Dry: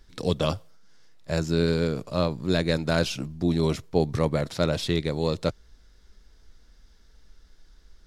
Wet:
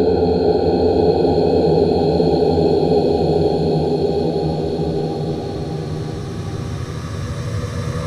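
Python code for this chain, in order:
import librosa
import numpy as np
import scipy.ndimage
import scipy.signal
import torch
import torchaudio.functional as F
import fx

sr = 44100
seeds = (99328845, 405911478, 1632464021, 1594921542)

y = fx.echo_diffused(x, sr, ms=549, feedback_pct=55, wet_db=-12.0)
y = fx.dereverb_blind(y, sr, rt60_s=1.3)
y = fx.paulstretch(y, sr, seeds[0], factor=40.0, window_s=0.25, from_s=3.94)
y = F.gain(torch.from_numpy(y), 7.5).numpy()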